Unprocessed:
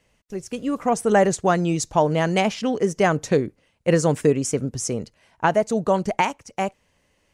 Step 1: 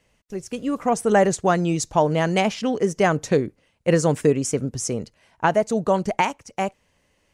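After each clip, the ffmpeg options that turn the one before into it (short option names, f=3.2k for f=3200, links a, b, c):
-af anull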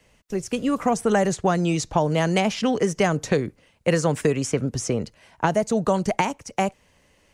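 -filter_complex "[0:a]acrossover=split=200|660|4100[a][b][c][d];[a]acompressor=threshold=-32dB:ratio=4[e];[b]acompressor=threshold=-30dB:ratio=4[f];[c]acompressor=threshold=-30dB:ratio=4[g];[d]acompressor=threshold=-40dB:ratio=4[h];[e][f][g][h]amix=inputs=4:normalize=0,volume=5.5dB"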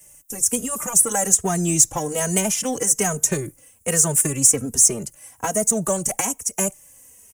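-filter_complex "[0:a]asplit=2[a][b];[b]asoftclip=type=hard:threshold=-20.5dB,volume=-8dB[c];[a][c]amix=inputs=2:normalize=0,aexciter=amount=10.3:drive=9.6:freq=6.6k,asplit=2[d][e];[e]adelay=2.9,afreqshift=-1.2[f];[d][f]amix=inputs=2:normalize=1,volume=-2dB"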